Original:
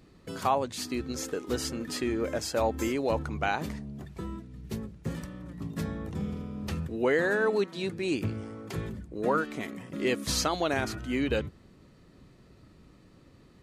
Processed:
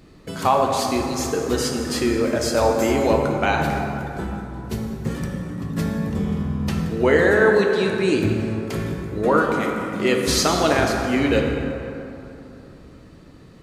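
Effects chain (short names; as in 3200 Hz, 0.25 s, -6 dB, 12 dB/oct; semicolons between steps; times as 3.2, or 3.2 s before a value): plate-style reverb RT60 3 s, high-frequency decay 0.5×, DRR 1 dB; gain +7.5 dB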